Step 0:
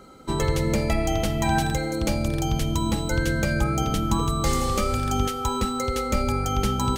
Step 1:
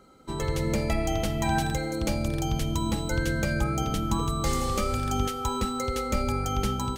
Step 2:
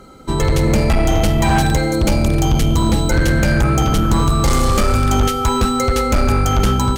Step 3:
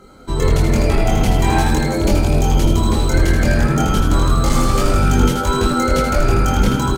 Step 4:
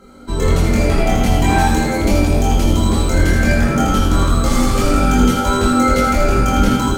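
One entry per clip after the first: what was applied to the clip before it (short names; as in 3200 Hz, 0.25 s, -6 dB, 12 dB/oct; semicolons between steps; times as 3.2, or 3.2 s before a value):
AGC gain up to 5 dB; gain -8 dB
low shelf 110 Hz +6 dB; in parallel at -12 dB: sine folder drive 11 dB, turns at -10.5 dBFS; on the sum: gain +5.5 dB
frequency-shifting echo 80 ms, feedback 46%, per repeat +86 Hz, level -5.5 dB; chorus voices 6, 0.35 Hz, delay 23 ms, depth 2.8 ms
reverb RT60 0.75 s, pre-delay 3 ms, DRR 0 dB; gain -2 dB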